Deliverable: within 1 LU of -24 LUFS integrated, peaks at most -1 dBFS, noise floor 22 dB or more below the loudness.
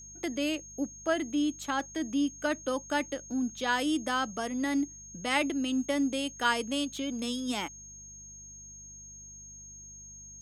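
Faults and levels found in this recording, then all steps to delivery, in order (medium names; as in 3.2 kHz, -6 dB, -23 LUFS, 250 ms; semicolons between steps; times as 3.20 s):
hum 50 Hz; highest harmonic 200 Hz; hum level -54 dBFS; steady tone 6.5 kHz; tone level -46 dBFS; loudness -31.0 LUFS; peak level -12.0 dBFS; loudness target -24.0 LUFS
-> de-hum 50 Hz, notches 4; band-stop 6.5 kHz, Q 30; trim +7 dB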